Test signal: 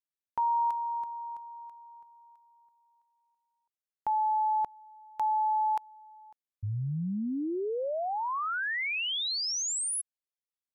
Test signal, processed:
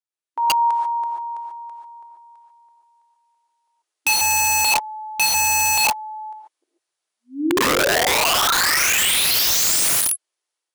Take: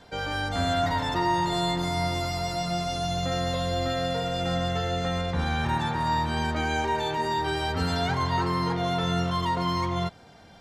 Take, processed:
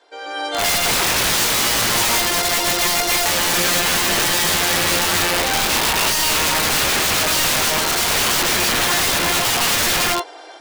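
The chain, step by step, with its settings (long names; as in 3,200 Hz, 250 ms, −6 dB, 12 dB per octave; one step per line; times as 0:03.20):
automatic gain control gain up to 15.5 dB
linear-phase brick-wall band-pass 290–11,000 Hz
reverb whose tail is shaped and stops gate 160 ms rising, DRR 0 dB
wrap-around overflow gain 10.5 dB
level −2.5 dB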